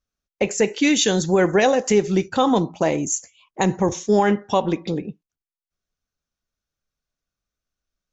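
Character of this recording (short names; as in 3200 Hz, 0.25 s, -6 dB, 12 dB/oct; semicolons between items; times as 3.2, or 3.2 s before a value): noise floor -91 dBFS; spectral tilt -4.5 dB/oct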